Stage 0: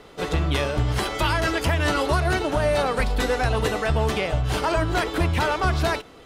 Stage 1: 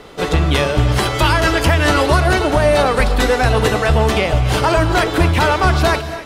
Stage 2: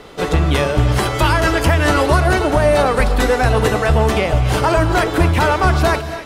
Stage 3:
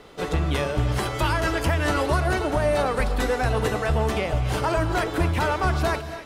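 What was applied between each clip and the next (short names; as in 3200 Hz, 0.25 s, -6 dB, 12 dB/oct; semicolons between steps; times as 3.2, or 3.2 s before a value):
non-linear reverb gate 0.3 s rising, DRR 11.5 dB; gain +8 dB
dynamic EQ 3700 Hz, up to -4 dB, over -30 dBFS, Q 0.92
bit-crush 12-bit; gain -8.5 dB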